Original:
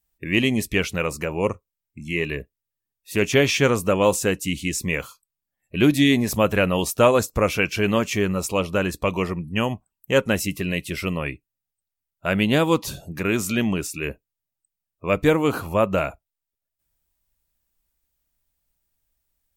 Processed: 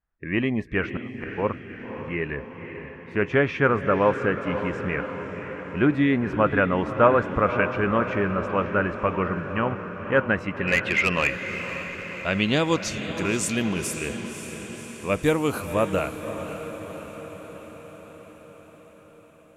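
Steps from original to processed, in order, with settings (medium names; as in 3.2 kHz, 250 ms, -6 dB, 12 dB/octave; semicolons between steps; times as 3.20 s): low-pass sweep 1.5 kHz -> 11 kHz, 10.13–13.96 s; 0.95–1.38 s: inverted gate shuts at -16 dBFS, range -25 dB; 10.67–11.28 s: overdrive pedal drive 17 dB, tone 4.5 kHz, clips at -6.5 dBFS; on a send: echo that smears into a reverb 544 ms, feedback 64%, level -9.5 dB; on the sum: trim -3.5 dB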